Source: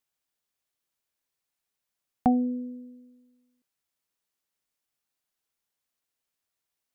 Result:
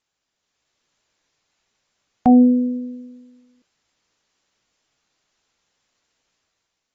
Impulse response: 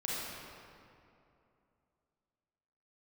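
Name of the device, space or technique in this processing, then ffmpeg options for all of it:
low-bitrate web radio: -af "dynaudnorm=framelen=130:gausssize=9:maxgain=7dB,alimiter=limit=-15dB:level=0:latency=1,volume=8.5dB" -ar 32000 -c:a aac -b:a 24k

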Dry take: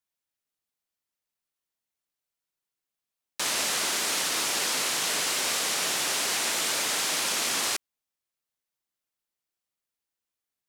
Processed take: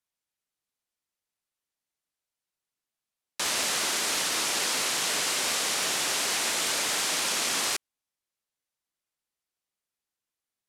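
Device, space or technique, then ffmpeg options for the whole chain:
overflowing digital effects unit: -af "aeval=exprs='(mod(6.68*val(0)+1,2)-1)/6.68':channel_layout=same,lowpass=13000"

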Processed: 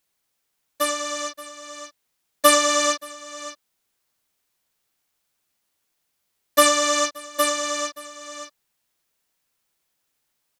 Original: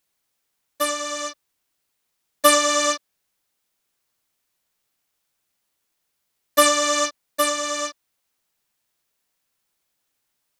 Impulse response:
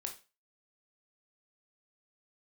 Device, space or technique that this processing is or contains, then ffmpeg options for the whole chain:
ducked delay: -filter_complex "[0:a]asplit=3[link_01][link_02][link_03];[link_02]adelay=576,volume=-8.5dB[link_04];[link_03]apad=whole_len=492774[link_05];[link_04][link_05]sidechaincompress=threshold=-34dB:ratio=10:attack=30:release=643[link_06];[link_01][link_06]amix=inputs=2:normalize=0"

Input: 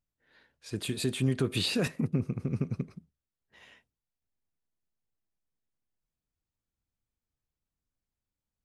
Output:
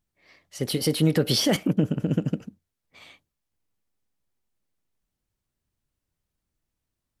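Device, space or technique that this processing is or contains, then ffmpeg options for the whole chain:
nightcore: -af "asetrate=52920,aresample=44100,volume=7dB"

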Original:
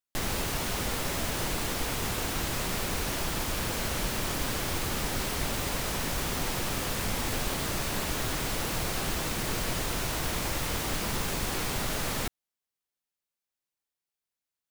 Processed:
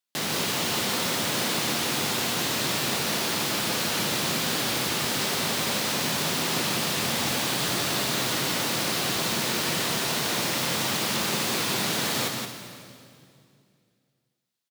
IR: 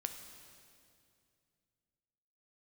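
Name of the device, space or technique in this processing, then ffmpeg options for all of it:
PA in a hall: -filter_complex "[0:a]highpass=frequency=130:width=0.5412,highpass=frequency=130:width=1.3066,equalizer=frequency=4000:width_type=o:width=1.2:gain=5.5,aecho=1:1:173:0.562[link_01];[1:a]atrim=start_sample=2205[link_02];[link_01][link_02]afir=irnorm=-1:irlink=0,volume=4dB"

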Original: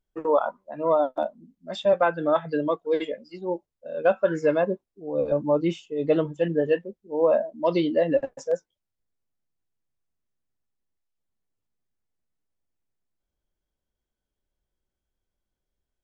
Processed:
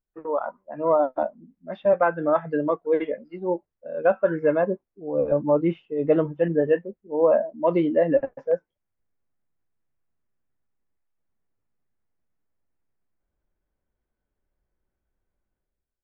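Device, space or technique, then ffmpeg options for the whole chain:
action camera in a waterproof case: -af "lowpass=frequency=2200:width=0.5412,lowpass=frequency=2200:width=1.3066,dynaudnorm=framelen=110:gausssize=9:maxgain=11.5dB,volume=-7dB" -ar 44100 -c:a aac -b:a 48k

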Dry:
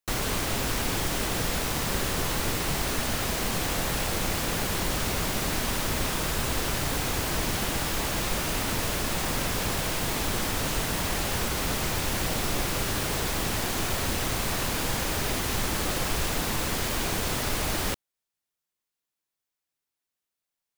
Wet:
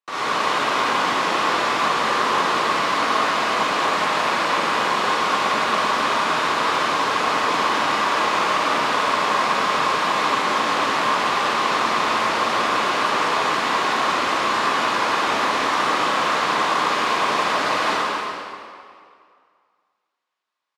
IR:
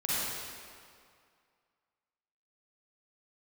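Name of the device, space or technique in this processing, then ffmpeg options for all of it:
station announcement: -filter_complex "[0:a]highpass=380,lowpass=3900,equalizer=frequency=1100:width_type=o:width=0.38:gain=11,aecho=1:1:192.4|268.2:0.316|0.282[link_01];[1:a]atrim=start_sample=2205[link_02];[link_01][link_02]afir=irnorm=-1:irlink=0"

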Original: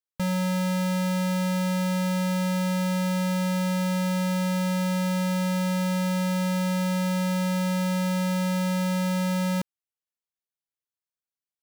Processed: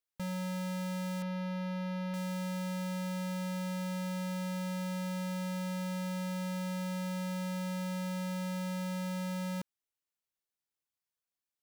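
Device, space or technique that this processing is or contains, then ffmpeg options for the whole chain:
limiter into clipper: -filter_complex "[0:a]asettb=1/sr,asplit=3[link_01][link_02][link_03];[link_01]atrim=end=1.224[link_04];[link_02]atrim=start=1.22:end=2.14,asetpts=PTS-STARTPTS,afade=type=in:duration=0.004:curve=qsin,afade=type=out:start_time=0.916:duration=0.004:curve=qsin,acrossover=split=2500[link_05][link_06];[link_06]acompressor=threshold=-52dB:ratio=4:attack=1:release=60[link_07];[link_05][link_07]amix=inputs=2:normalize=0[link_08];[link_03]atrim=start=2.136[link_09];[link_04][link_08]acrossfade=duration=0.004:curve1=hsin:curve2=qsin[link_10];[link_10][link_09]acrossfade=duration=0.004:curve1=qsin:curve2=hsin,alimiter=level_in=7.5dB:limit=-24dB:level=0:latency=1,volume=-7.5dB,asoftclip=type=hard:threshold=-36dB"

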